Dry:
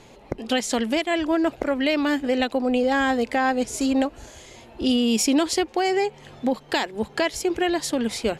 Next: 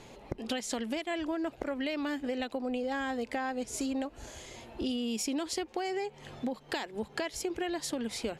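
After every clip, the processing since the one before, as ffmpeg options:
ffmpeg -i in.wav -af "acompressor=threshold=-30dB:ratio=4,volume=-2.5dB" out.wav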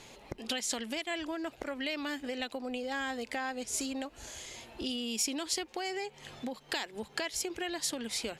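ffmpeg -i in.wav -af "tiltshelf=frequency=1400:gain=-5" out.wav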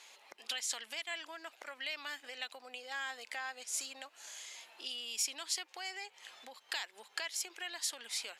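ffmpeg -i in.wav -af "highpass=1000,volume=-2.5dB" out.wav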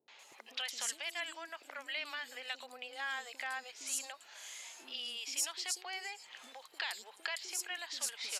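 ffmpeg -i in.wav -filter_complex "[0:a]acrossover=split=390|4900[link_01][link_02][link_03];[link_02]adelay=80[link_04];[link_03]adelay=190[link_05];[link_01][link_04][link_05]amix=inputs=3:normalize=0,volume=1.5dB" out.wav

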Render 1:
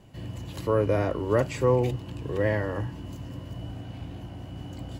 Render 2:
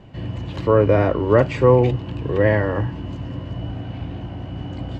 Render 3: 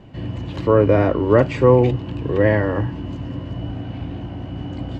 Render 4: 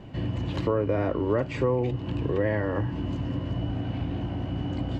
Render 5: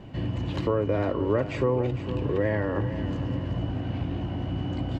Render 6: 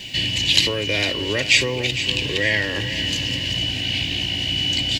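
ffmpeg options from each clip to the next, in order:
ffmpeg -i in.wav -af "lowpass=3300,volume=8.5dB" out.wav
ffmpeg -i in.wav -af "equalizer=frequency=280:width_type=o:width=0.77:gain=3.5" out.wav
ffmpeg -i in.wav -af "acompressor=threshold=-25dB:ratio=3" out.wav
ffmpeg -i in.wav -af "aecho=1:1:454|908|1362|1816:0.251|0.098|0.0382|0.0149" out.wav
ffmpeg -i in.wav -af "aexciter=amount=14.4:drive=9.6:freq=2100,volume=-1dB" out.wav

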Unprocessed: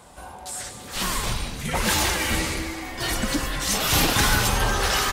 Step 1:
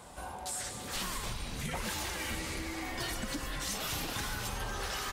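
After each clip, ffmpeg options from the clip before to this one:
ffmpeg -i in.wav -af "acompressor=threshold=-31dB:ratio=10,volume=-2.5dB" out.wav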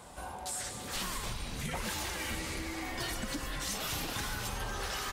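ffmpeg -i in.wav -af anull out.wav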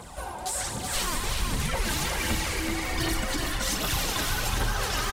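ffmpeg -i in.wav -af "aphaser=in_gain=1:out_gain=1:delay=3.4:decay=0.53:speed=1.3:type=triangular,aecho=1:1:376:0.596,volume=5.5dB" out.wav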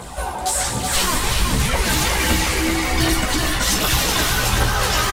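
ffmpeg -i in.wav -filter_complex "[0:a]asplit=2[link_01][link_02];[link_02]adelay=16,volume=-5dB[link_03];[link_01][link_03]amix=inputs=2:normalize=0,volume=8.5dB" out.wav

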